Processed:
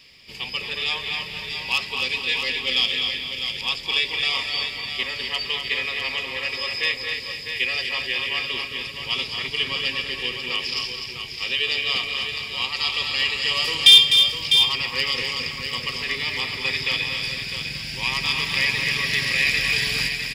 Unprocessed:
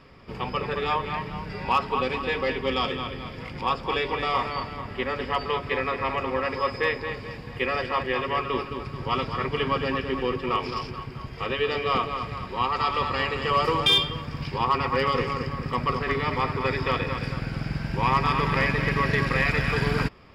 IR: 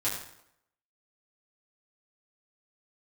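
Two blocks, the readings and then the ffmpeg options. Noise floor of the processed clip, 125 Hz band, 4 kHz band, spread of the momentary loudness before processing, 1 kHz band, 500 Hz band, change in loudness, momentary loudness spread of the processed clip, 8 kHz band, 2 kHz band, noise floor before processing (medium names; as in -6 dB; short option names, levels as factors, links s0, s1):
-35 dBFS, -9.5 dB, +12.5 dB, 9 LU, -10.5 dB, -9.5 dB, +5.0 dB, 11 LU, no reading, +5.5 dB, -39 dBFS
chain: -af "aecho=1:1:253|652:0.447|0.422,aexciter=amount=10.9:drive=6.7:freq=2100,volume=0.282"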